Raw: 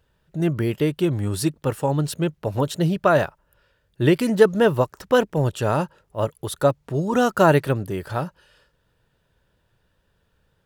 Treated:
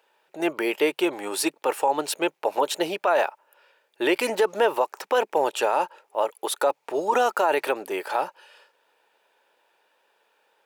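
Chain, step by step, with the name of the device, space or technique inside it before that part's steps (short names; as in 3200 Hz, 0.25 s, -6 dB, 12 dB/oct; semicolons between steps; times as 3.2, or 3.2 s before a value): laptop speaker (HPF 380 Hz 24 dB/oct; bell 850 Hz +9.5 dB 0.42 oct; bell 2400 Hz +8 dB 0.36 oct; limiter -15 dBFS, peak gain reduction 13.5 dB); gain +3 dB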